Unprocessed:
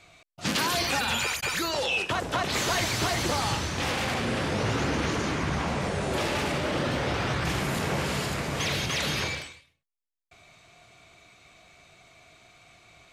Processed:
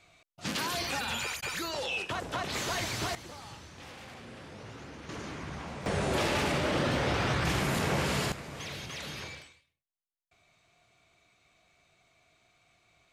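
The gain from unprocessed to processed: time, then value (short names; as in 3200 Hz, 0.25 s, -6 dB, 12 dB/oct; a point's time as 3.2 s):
-6.5 dB
from 3.15 s -19 dB
from 5.09 s -12 dB
from 5.86 s -1 dB
from 8.32 s -12 dB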